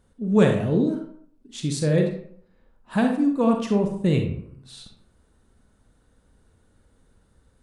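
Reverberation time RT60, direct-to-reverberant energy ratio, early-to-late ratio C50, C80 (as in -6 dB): 0.60 s, 3.0 dB, 5.5 dB, 9.0 dB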